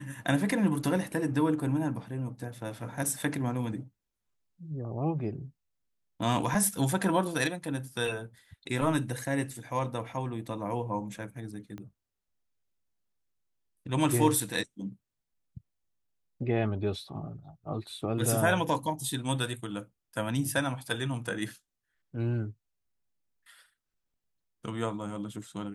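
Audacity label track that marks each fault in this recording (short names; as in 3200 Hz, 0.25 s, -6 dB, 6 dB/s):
11.780000	11.780000	pop -29 dBFS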